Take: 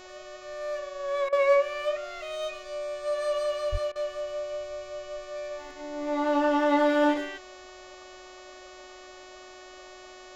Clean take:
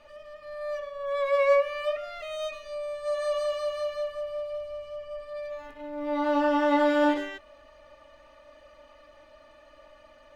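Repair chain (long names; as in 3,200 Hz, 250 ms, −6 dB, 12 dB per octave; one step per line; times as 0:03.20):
hum removal 369 Hz, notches 20
high-pass at the plosives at 0:03.71
repair the gap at 0:01.29/0:03.92, 35 ms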